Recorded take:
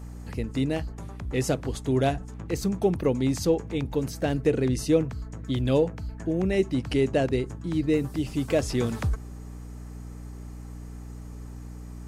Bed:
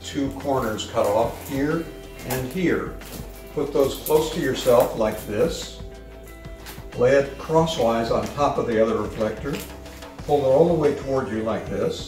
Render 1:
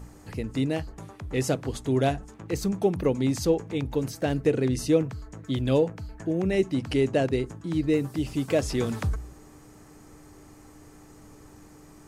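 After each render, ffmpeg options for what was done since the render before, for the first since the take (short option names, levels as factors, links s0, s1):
-af "bandreject=f=60:t=h:w=4,bandreject=f=120:t=h:w=4,bandreject=f=180:t=h:w=4,bandreject=f=240:t=h:w=4"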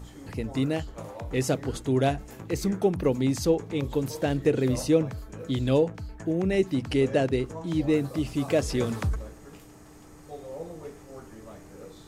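-filter_complex "[1:a]volume=0.0794[s0];[0:a][s0]amix=inputs=2:normalize=0"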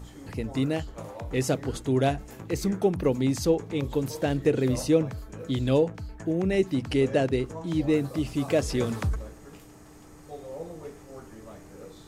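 -af anull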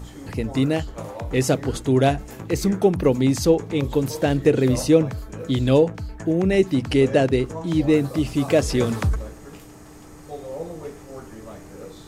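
-af "volume=2"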